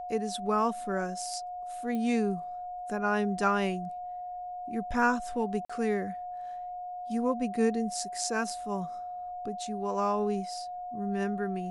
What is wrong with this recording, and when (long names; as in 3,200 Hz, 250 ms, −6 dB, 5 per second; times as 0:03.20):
whistle 720 Hz −36 dBFS
0:01.95: click −24 dBFS
0:05.65–0:05.70: drop-out 45 ms